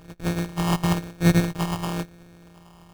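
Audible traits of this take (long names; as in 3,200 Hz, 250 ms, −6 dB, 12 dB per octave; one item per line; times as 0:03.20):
a buzz of ramps at a fixed pitch in blocks of 256 samples
phaser sweep stages 6, 1 Hz, lowest notch 500–1,000 Hz
aliases and images of a low sample rate 2,000 Hz, jitter 0%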